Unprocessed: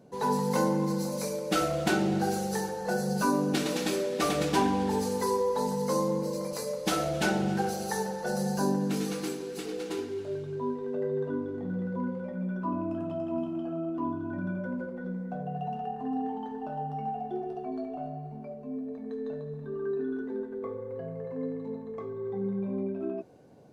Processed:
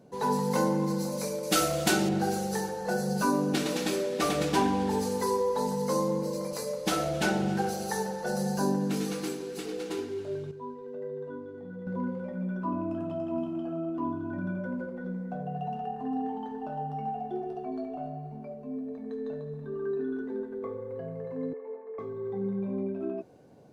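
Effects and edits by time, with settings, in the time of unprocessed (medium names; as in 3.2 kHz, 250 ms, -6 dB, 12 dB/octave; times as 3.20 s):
1.43–2.09 s: treble shelf 4 kHz +11.5 dB
10.51–11.87 s: feedback comb 490 Hz, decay 0.18 s, mix 70%
21.53–21.99 s: elliptic band-pass 390–2400 Hz, stop band 50 dB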